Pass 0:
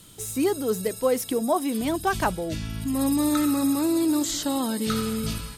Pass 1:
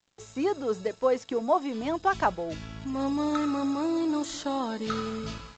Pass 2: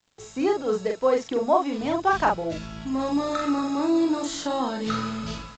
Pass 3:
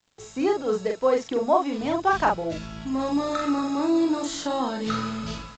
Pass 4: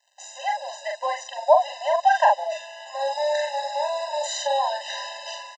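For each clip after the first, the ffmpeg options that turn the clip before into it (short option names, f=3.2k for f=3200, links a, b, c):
-af "equalizer=f=900:w=0.48:g=9.5,aresample=16000,aeval=exprs='sgn(val(0))*max(abs(val(0))-0.00631,0)':c=same,aresample=44100,volume=-8.5dB"
-filter_complex "[0:a]asplit=2[a][b];[b]adelay=42,volume=-3dB[c];[a][c]amix=inputs=2:normalize=0,volume=2.5dB"
-af anull
-filter_complex "[0:a]asplit=2[a][b];[b]adelay=160,highpass=300,lowpass=3.4k,asoftclip=type=hard:threshold=-17dB,volume=-27dB[c];[a][c]amix=inputs=2:normalize=0,alimiter=level_in=11dB:limit=-1dB:release=50:level=0:latency=1,afftfilt=real='re*eq(mod(floor(b*sr/1024/520),2),1)':imag='im*eq(mod(floor(b*sr/1024/520),2),1)':win_size=1024:overlap=0.75,volume=-4dB"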